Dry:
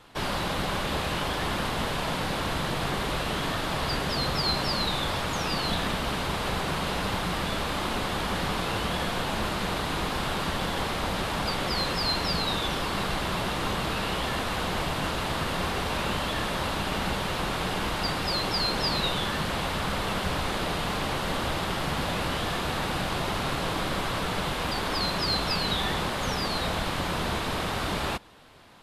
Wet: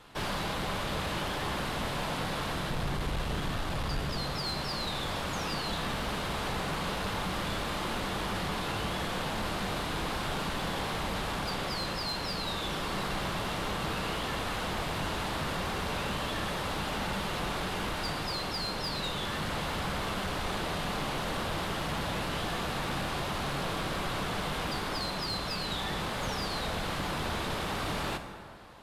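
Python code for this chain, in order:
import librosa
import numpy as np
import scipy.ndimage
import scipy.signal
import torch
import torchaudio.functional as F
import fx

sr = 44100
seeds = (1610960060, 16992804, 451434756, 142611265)

y = fx.low_shelf(x, sr, hz=130.0, db=11.5, at=(2.7, 4.17))
y = fx.rider(y, sr, range_db=10, speed_s=0.5)
y = 10.0 ** (-24.5 / 20.0) * np.tanh(y / 10.0 ** (-24.5 / 20.0))
y = fx.rev_plate(y, sr, seeds[0], rt60_s=2.3, hf_ratio=0.5, predelay_ms=0, drr_db=6.5)
y = F.gain(torch.from_numpy(y), -3.5).numpy()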